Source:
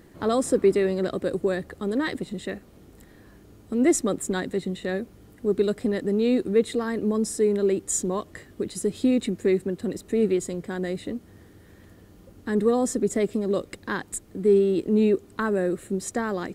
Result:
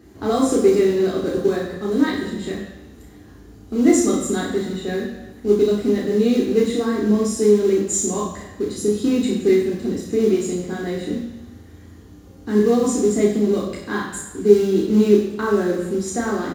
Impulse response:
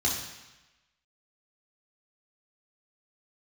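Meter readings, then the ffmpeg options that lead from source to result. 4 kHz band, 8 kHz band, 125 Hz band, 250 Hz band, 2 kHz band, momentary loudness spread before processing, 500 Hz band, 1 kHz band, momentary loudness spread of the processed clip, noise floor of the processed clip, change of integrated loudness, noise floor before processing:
+6.0 dB, +5.0 dB, +5.0 dB, +6.0 dB, +3.0 dB, 11 LU, +5.5 dB, +4.5 dB, 12 LU, -44 dBFS, +5.5 dB, -52 dBFS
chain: -filter_complex "[0:a]asplit=2[a][b];[b]acrusher=bits=3:mode=log:mix=0:aa=0.000001,volume=-6dB[c];[a][c]amix=inputs=2:normalize=0,asplit=2[d][e];[e]adelay=34,volume=-5dB[f];[d][f]amix=inputs=2:normalize=0[g];[1:a]atrim=start_sample=2205[h];[g][h]afir=irnorm=-1:irlink=0,volume=-10.5dB"

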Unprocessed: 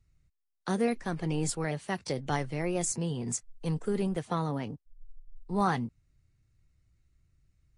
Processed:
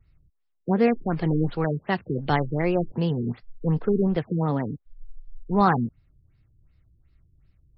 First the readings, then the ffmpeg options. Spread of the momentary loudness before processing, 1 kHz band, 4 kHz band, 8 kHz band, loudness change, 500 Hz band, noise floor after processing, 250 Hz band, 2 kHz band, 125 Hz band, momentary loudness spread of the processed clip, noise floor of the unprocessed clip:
6 LU, +7.0 dB, +1.5 dB, under -40 dB, +7.0 dB, +7.5 dB, -72 dBFS, +8.0 dB, +6.0 dB, +8.0 dB, 9 LU, -80 dBFS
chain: -af "afftfilt=real='re*lt(b*sr/1024,430*pow(5600/430,0.5+0.5*sin(2*PI*2.7*pts/sr)))':imag='im*lt(b*sr/1024,430*pow(5600/430,0.5+0.5*sin(2*PI*2.7*pts/sr)))':win_size=1024:overlap=0.75,volume=8dB"

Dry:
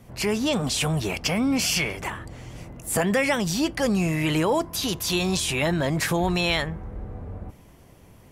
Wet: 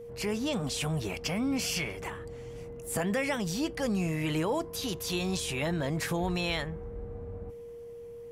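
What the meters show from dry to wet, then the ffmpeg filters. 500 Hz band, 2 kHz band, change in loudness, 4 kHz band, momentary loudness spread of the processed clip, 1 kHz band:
-6.5 dB, -8.5 dB, -8.0 dB, -8.5 dB, 13 LU, -8.0 dB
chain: -af "aeval=exprs='val(0)+0.02*sin(2*PI*470*n/s)':c=same,lowshelf=f=330:g=2.5,volume=-8.5dB"

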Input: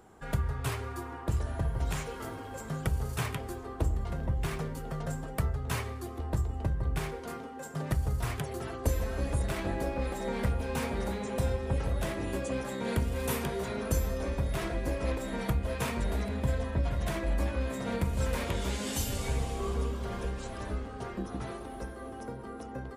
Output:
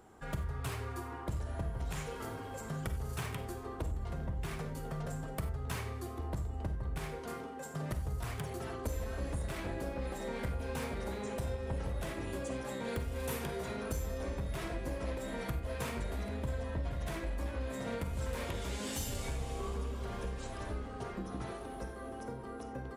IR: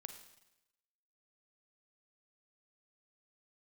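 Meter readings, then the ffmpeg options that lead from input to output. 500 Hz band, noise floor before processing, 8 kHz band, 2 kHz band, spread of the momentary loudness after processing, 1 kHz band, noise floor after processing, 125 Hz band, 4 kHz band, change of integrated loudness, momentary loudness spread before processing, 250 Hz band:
-5.0 dB, -42 dBFS, -5.0 dB, -5.0 dB, 4 LU, -4.5 dB, -44 dBFS, -6.0 dB, -5.0 dB, -5.5 dB, 8 LU, -6.0 dB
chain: -filter_complex "[0:a]acompressor=threshold=-34dB:ratio=2,aeval=exprs='clip(val(0),-1,0.0316)':c=same[a];[1:a]atrim=start_sample=2205,afade=t=out:st=0.15:d=0.01,atrim=end_sample=7056[b];[a][b]afir=irnorm=-1:irlink=0,volume=3.5dB"

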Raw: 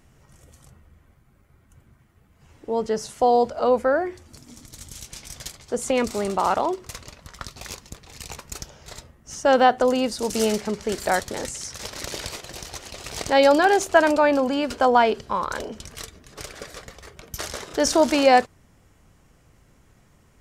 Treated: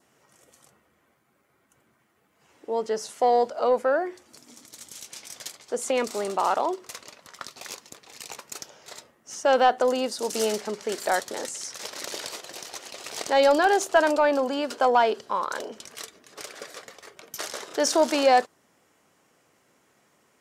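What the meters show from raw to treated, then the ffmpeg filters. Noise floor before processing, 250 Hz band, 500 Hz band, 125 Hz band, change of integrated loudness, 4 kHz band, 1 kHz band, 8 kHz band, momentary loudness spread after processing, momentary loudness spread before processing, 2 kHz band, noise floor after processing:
-58 dBFS, -6.5 dB, -2.5 dB, under -10 dB, -3.0 dB, -2.0 dB, -2.5 dB, -1.5 dB, 21 LU, 22 LU, -3.5 dB, -67 dBFS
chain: -af "highpass=320,acontrast=41,adynamicequalizer=threshold=0.01:dfrequency=2300:dqfactor=3.1:tfrequency=2300:tqfactor=3.1:attack=5:release=100:ratio=0.375:range=2.5:mode=cutabove:tftype=bell,volume=-7dB"

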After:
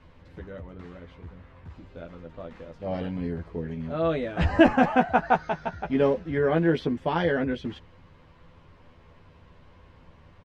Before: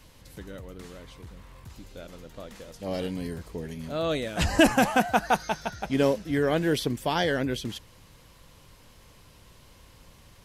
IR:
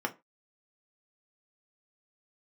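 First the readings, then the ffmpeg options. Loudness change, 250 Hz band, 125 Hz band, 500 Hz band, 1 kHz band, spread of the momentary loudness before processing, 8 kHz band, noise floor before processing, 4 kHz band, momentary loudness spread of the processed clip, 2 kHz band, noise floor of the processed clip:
+1.5 dB, +2.0 dB, +2.0 dB, +2.0 dB, +1.5 dB, 22 LU, under -20 dB, -55 dBFS, -7.5 dB, 22 LU, -0.5 dB, -55 dBFS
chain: -filter_complex "[0:a]lowpass=2k,asplit=2[a][b];[b]adelay=12,volume=-3.5dB[c];[a][c]amix=inputs=2:normalize=0"

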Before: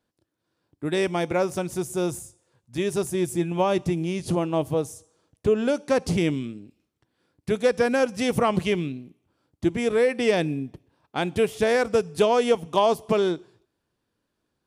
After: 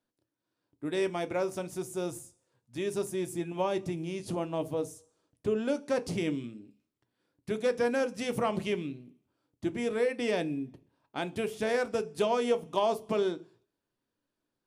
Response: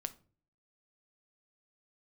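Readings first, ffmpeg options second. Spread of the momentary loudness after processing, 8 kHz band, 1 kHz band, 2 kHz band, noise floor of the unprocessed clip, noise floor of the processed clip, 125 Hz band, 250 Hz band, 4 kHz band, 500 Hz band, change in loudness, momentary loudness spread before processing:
10 LU, -8.0 dB, -8.0 dB, -7.5 dB, -79 dBFS, under -85 dBFS, -10.5 dB, -8.0 dB, -8.0 dB, -7.5 dB, -7.5 dB, 12 LU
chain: -filter_complex "[0:a]equalizer=f=66:w=1.7:g=-10[a];[1:a]atrim=start_sample=2205,asetrate=88200,aresample=44100[b];[a][b]afir=irnorm=-1:irlink=0"

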